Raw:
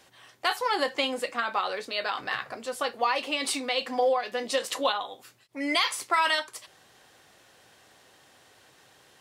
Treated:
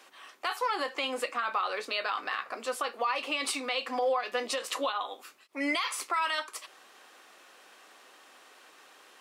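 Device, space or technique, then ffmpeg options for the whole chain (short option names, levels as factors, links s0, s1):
laptop speaker: -af "highpass=f=250:w=0.5412,highpass=f=250:w=1.3066,equalizer=f=1200:t=o:w=0.51:g=8,equalizer=f=2500:t=o:w=0.38:g=5,alimiter=limit=0.0944:level=0:latency=1:release=207"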